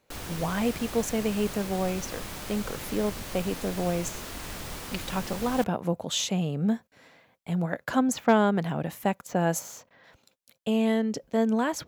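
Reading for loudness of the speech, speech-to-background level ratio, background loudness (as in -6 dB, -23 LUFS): -28.5 LUFS, 9.0 dB, -37.5 LUFS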